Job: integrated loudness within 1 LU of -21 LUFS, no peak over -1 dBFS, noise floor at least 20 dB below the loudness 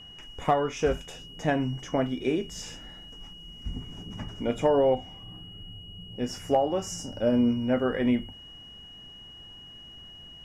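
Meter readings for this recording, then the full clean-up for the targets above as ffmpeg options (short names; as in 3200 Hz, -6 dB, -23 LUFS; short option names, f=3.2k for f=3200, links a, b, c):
steady tone 2900 Hz; tone level -45 dBFS; loudness -28.0 LUFS; peak -11.5 dBFS; loudness target -21.0 LUFS
-> -af "bandreject=f=2.9k:w=30"
-af "volume=7dB"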